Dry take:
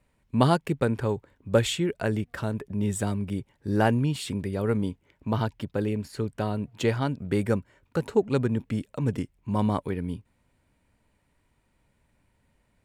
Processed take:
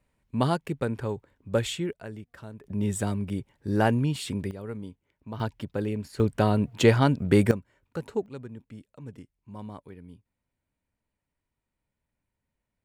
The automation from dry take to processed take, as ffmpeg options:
ffmpeg -i in.wav -af "asetnsamples=nb_out_samples=441:pad=0,asendcmd='1.93 volume volume -13dB;2.64 volume volume -0.5dB;4.51 volume volume -11dB;5.4 volume volume -2dB;6.2 volume volume 6dB;7.51 volume volume -6.5dB;8.26 volume volume -15.5dB',volume=-4dB" out.wav

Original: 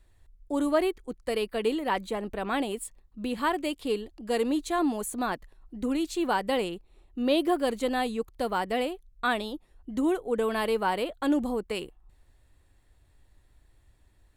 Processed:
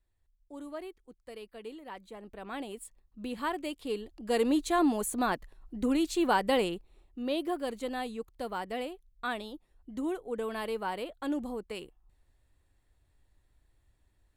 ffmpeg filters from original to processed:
ffmpeg -i in.wav -af "volume=0.5dB,afade=type=in:start_time=2.01:duration=1.25:silence=0.298538,afade=type=in:start_time=3.88:duration=0.64:silence=0.473151,afade=type=out:start_time=6.72:duration=0.48:silence=0.398107" out.wav

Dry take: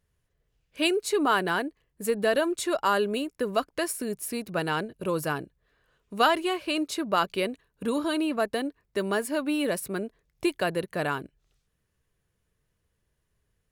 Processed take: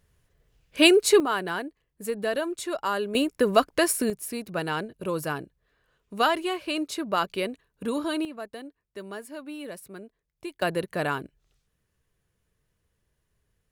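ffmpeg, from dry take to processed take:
ffmpeg -i in.wav -af "asetnsamples=nb_out_samples=441:pad=0,asendcmd='1.2 volume volume -3.5dB;3.15 volume volume 6.5dB;4.1 volume volume -1dB;8.25 volume volume -11dB;10.62 volume volume 1dB',volume=8dB" out.wav

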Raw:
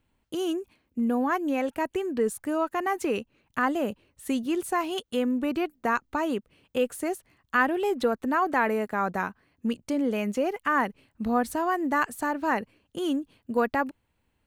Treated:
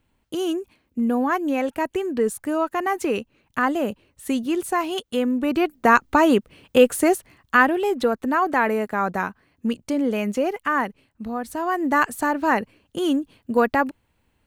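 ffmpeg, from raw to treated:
ffmpeg -i in.wav -af "volume=22dB,afade=type=in:start_time=5.4:duration=0.63:silence=0.421697,afade=type=out:start_time=7.1:duration=0.71:silence=0.421697,afade=type=out:start_time=10.49:duration=0.9:silence=0.375837,afade=type=in:start_time=11.39:duration=0.58:silence=0.298538" out.wav

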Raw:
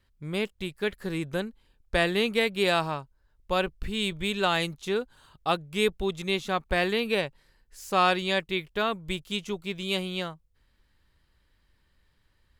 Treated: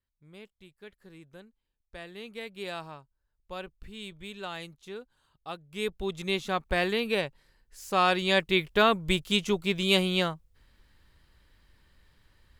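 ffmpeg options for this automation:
ffmpeg -i in.wav -af "volume=5.5dB,afade=type=in:start_time=2.07:duration=0.55:silence=0.473151,afade=type=in:start_time=5.6:duration=0.67:silence=0.266073,afade=type=in:start_time=8.07:duration=0.59:silence=0.446684" out.wav

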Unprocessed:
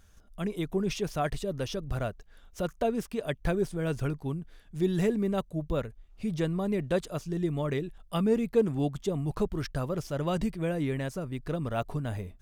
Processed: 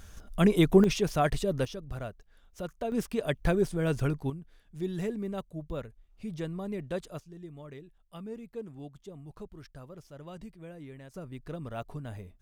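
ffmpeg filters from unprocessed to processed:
ffmpeg -i in.wav -af "asetnsamples=nb_out_samples=441:pad=0,asendcmd='0.84 volume volume 3.5dB;1.65 volume volume -6dB;2.92 volume volume 2dB;4.3 volume volume -6.5dB;7.2 volume volume -15.5dB;11.14 volume volume -7dB',volume=10dB" out.wav

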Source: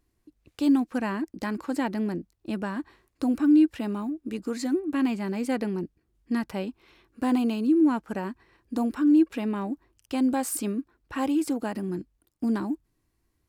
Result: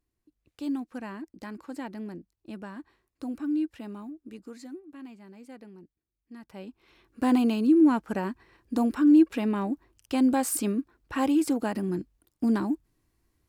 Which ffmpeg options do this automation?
ffmpeg -i in.wav -af "volume=11dB,afade=type=out:start_time=4.16:duration=0.75:silence=0.334965,afade=type=in:start_time=6.38:duration=0.26:silence=0.354813,afade=type=in:start_time=6.64:duration=0.64:silence=0.266073" out.wav

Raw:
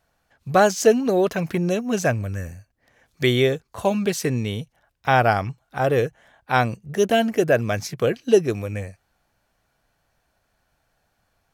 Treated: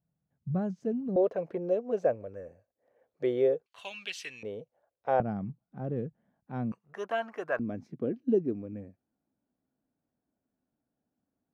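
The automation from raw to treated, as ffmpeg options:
ffmpeg -i in.wav -af "asetnsamples=nb_out_samples=441:pad=0,asendcmd='1.16 bandpass f 510;3.66 bandpass f 2900;4.43 bandpass f 520;5.2 bandpass f 200;6.72 bandpass f 1100;7.59 bandpass f 260',bandpass=frequency=160:width_type=q:width=3.5:csg=0" out.wav

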